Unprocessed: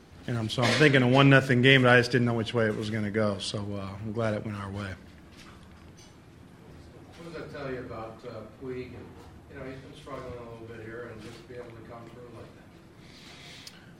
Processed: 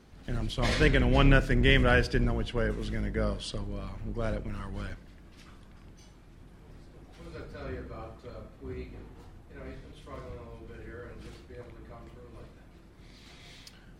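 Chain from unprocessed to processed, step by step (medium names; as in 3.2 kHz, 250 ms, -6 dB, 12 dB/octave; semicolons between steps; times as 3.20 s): octave divider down 2 oct, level +3 dB; trim -5 dB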